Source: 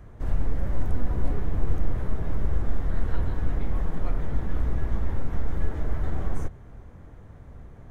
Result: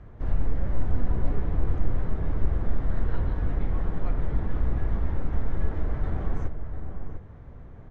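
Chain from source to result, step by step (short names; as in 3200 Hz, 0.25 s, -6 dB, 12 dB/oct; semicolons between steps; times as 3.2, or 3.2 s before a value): air absorption 150 m; outdoor echo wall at 120 m, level -8 dB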